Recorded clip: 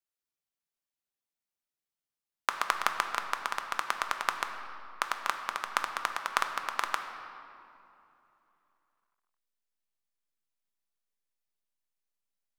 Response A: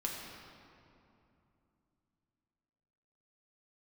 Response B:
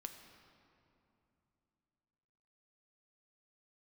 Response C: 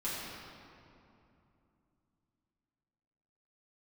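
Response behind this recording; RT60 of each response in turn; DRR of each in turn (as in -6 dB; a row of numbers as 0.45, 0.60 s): B; 2.8, 2.9, 2.8 s; -2.0, 5.5, -10.0 dB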